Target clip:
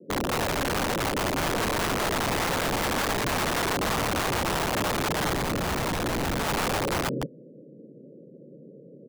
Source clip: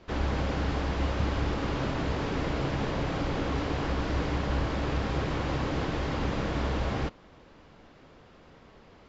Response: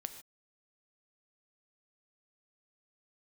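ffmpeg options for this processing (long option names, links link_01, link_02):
-filter_complex "[0:a]asuperpass=centerf=270:order=20:qfactor=0.62,aecho=1:1:168:0.631,aeval=exprs='(mod(29.9*val(0)+1,2)-1)/29.9':channel_layout=same,asettb=1/sr,asplit=3[link_01][link_02][link_03];[link_01]atrim=end=5.334[link_04];[link_02]atrim=start=5.33:end=6.45,asetpts=PTS-STARTPTS,afade=type=in:duration=0.004:curve=qsin,afade=type=out:start_time=1.116:duration=0.004:curve=qsin,lowshelf=frequency=330:gain=6[link_05];[link_03]atrim=start=6.446[link_06];[link_04][link_05]acrossfade=duration=0.004:curve1=hsin:curve2=qsin[link_07];[link_07][link_06]acrossfade=duration=0.004:curve1=qsin:curve2=hsin,alimiter=level_in=5.5dB:limit=-24dB:level=0:latency=1,volume=-5.5dB,volume=8dB"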